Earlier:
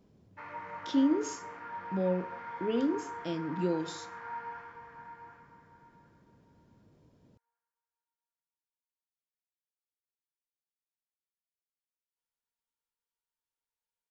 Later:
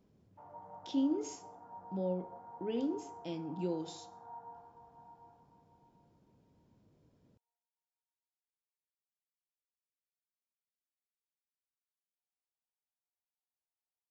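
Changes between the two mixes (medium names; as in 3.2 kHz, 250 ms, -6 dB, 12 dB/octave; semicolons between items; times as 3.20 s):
speech -5.5 dB; background: add four-pole ladder low-pass 800 Hz, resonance 80%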